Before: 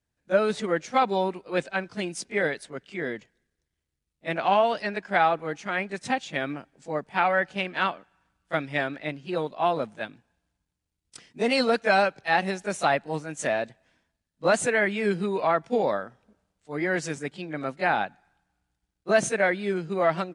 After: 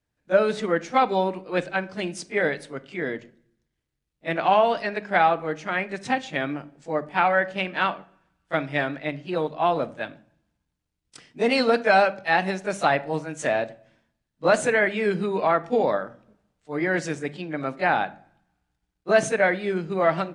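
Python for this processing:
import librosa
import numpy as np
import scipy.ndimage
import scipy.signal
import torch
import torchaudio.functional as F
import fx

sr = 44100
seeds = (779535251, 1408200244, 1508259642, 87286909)

y = fx.high_shelf(x, sr, hz=6100.0, db=-7.5)
y = fx.hum_notches(y, sr, base_hz=50, count=4)
y = fx.room_shoebox(y, sr, seeds[0], volume_m3=600.0, walls='furnished', distance_m=0.46)
y = y * librosa.db_to_amplitude(2.5)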